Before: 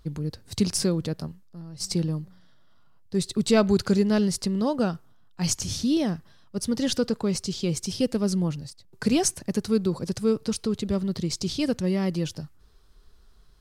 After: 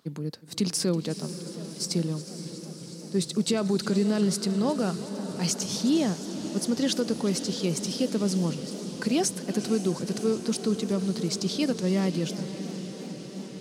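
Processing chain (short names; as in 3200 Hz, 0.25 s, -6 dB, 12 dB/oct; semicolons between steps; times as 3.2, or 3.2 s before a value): HPF 160 Hz 24 dB/oct; limiter -16.5 dBFS, peak gain reduction 10 dB; on a send: diffused feedback echo 0.553 s, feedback 75%, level -12.5 dB; on the sum: warbling echo 0.359 s, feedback 74%, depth 136 cents, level -17 dB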